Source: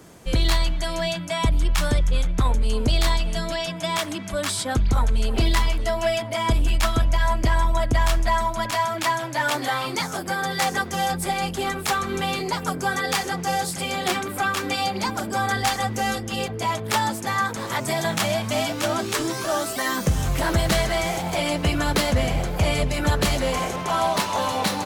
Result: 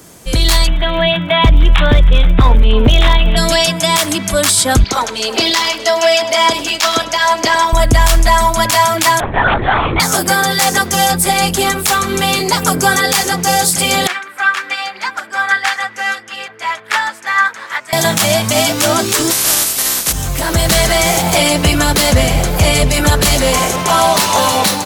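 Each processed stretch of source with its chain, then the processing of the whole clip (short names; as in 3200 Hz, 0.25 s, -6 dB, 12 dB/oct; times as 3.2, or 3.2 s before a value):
0.66–3.36 steep low-pass 3700 Hz 96 dB/oct + crackle 65/s -48 dBFS + overloaded stage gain 14 dB
4.84–7.73 HPF 370 Hz + resonant high shelf 7300 Hz -8 dB, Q 1.5 + echo 0.103 s -16.5 dB
9.2–10 LPF 2100 Hz + LPC vocoder at 8 kHz whisper
14.07–17.93 band-pass 1700 Hz, Q 2 + upward expander, over -38 dBFS
19.3–20.11 spectral contrast lowered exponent 0.29 + brick-wall FIR low-pass 14000 Hz
whole clip: high shelf 4600 Hz +10.5 dB; AGC; maximiser +6 dB; gain -1 dB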